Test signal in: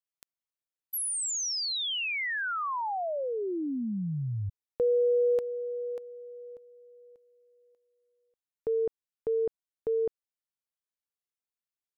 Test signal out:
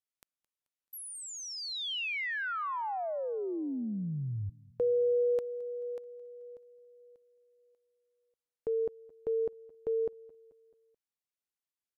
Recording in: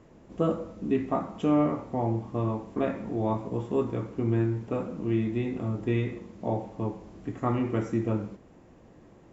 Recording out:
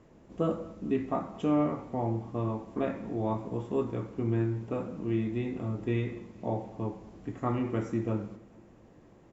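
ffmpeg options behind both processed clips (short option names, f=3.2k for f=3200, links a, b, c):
-filter_complex "[0:a]acrossover=split=3600[a][b];[b]acompressor=threshold=-41dB:ratio=4:attack=1:release=60[c];[a][c]amix=inputs=2:normalize=0,asplit=2[d][e];[e]aecho=0:1:217|434|651|868:0.075|0.039|0.0203|0.0105[f];[d][f]amix=inputs=2:normalize=0,aresample=32000,aresample=44100,volume=-3dB"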